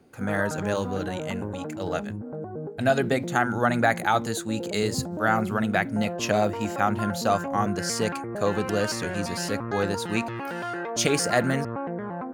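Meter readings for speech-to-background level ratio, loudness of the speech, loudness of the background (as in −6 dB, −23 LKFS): 6.5 dB, −27.0 LKFS, −33.5 LKFS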